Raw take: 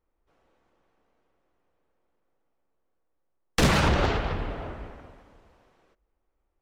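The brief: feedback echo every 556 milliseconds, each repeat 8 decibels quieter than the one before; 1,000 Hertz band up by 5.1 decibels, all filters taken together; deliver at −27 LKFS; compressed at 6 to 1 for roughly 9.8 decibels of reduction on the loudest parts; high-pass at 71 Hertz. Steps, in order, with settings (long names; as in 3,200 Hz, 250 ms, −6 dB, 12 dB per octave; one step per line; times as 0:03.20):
high-pass filter 71 Hz
parametric band 1,000 Hz +6.5 dB
downward compressor 6 to 1, threshold −27 dBFS
repeating echo 556 ms, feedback 40%, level −8 dB
level +6 dB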